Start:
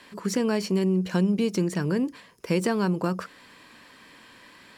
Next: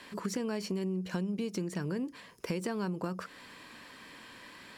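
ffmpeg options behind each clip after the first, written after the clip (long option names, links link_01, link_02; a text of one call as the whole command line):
ffmpeg -i in.wav -af "acompressor=threshold=-33dB:ratio=4" out.wav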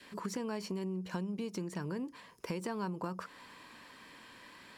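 ffmpeg -i in.wav -af "adynamicequalizer=threshold=0.00141:dfrequency=970:dqfactor=2.8:tfrequency=970:tqfactor=2.8:attack=5:release=100:ratio=0.375:range=3.5:mode=boostabove:tftype=bell,volume=-4dB" out.wav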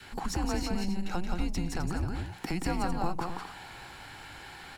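ffmpeg -i in.wav -filter_complex "[0:a]aeval=exprs='if(lt(val(0),0),0.708*val(0),val(0))':channel_layout=same,afreqshift=-180,asplit=2[link_01][link_02];[link_02]aecho=0:1:174.9|259.5:0.631|0.316[link_03];[link_01][link_03]amix=inputs=2:normalize=0,volume=8dB" out.wav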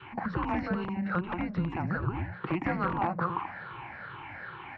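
ffmpeg -i in.wav -filter_complex "[0:a]afftfilt=real='re*pow(10,13/40*sin(2*PI*(0.65*log(max(b,1)*sr/1024/100)/log(2)-(-2.4)*(pts-256)/sr)))':imag='im*pow(10,13/40*sin(2*PI*(0.65*log(max(b,1)*sr/1024/100)/log(2)-(-2.4)*(pts-256)/sr)))':win_size=1024:overlap=0.75,asplit=2[link_01][link_02];[link_02]aeval=exprs='(mod(8.91*val(0)+1,2)-1)/8.91':channel_layout=same,volume=-7.5dB[link_03];[link_01][link_03]amix=inputs=2:normalize=0,highpass=110,equalizer=frequency=120:width_type=q:width=4:gain=4,equalizer=frequency=260:width_type=q:width=4:gain=-6,equalizer=frequency=430:width_type=q:width=4:gain=-4,equalizer=frequency=750:width_type=q:width=4:gain=-5,equalizer=frequency=1100:width_type=q:width=4:gain=5,lowpass=frequency=2300:width=0.5412,lowpass=frequency=2300:width=1.3066" out.wav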